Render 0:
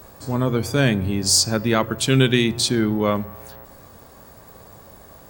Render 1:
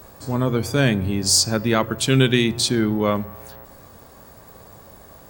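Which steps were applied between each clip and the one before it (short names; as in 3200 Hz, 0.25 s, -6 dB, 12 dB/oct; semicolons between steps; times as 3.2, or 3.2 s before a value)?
nothing audible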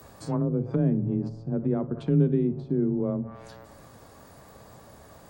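flutter echo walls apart 10.2 m, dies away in 0.21 s; treble ducked by the level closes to 390 Hz, closed at -17 dBFS; frequency shift +21 Hz; gain -4 dB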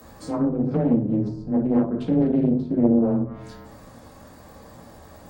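shoebox room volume 280 m³, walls furnished, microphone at 2.1 m; Doppler distortion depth 0.5 ms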